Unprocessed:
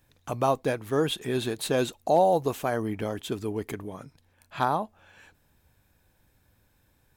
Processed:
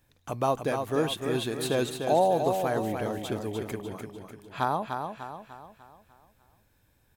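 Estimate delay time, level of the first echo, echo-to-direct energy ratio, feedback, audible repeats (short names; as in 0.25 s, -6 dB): 0.298 s, -6.0 dB, -5.0 dB, 46%, 5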